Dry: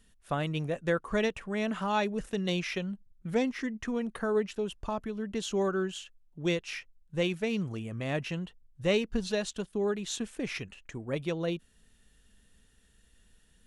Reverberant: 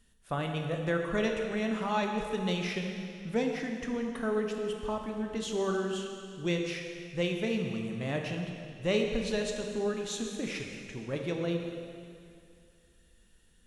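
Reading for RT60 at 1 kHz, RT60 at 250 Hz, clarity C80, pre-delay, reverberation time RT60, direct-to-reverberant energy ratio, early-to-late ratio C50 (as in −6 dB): 2.4 s, 2.4 s, 4.5 dB, 6 ms, 2.4 s, 2.0 dB, 3.5 dB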